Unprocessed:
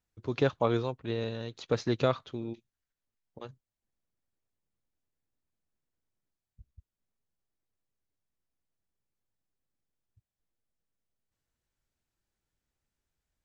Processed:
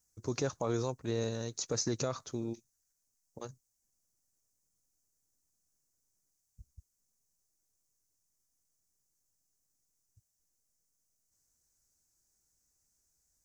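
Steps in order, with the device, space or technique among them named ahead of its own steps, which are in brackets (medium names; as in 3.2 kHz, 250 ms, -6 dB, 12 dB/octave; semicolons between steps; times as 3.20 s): over-bright horn tweeter (resonant high shelf 4.5 kHz +12 dB, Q 3; peak limiter -22.5 dBFS, peak gain reduction 9.5 dB)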